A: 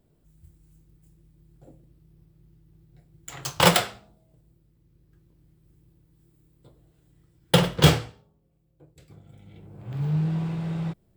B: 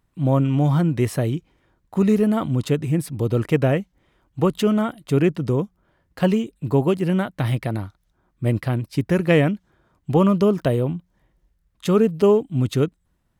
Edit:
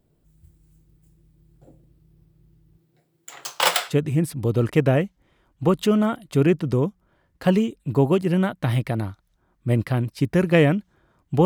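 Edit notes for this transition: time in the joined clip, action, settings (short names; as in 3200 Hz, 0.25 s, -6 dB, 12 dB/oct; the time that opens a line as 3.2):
A
2.77–3.95 HPF 190 Hz -> 960 Hz
3.91 switch to B from 2.67 s, crossfade 0.08 s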